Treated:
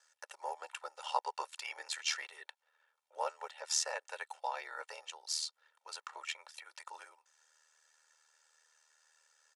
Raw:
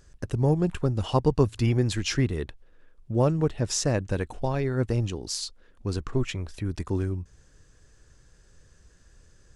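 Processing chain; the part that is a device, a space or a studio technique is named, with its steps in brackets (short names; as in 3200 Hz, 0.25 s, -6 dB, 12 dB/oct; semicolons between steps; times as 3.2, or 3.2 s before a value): steep high-pass 640 Hz 48 dB/oct; ring-modulated robot voice (ring modulator 39 Hz; comb 2.2 ms, depth 67%); gain -3 dB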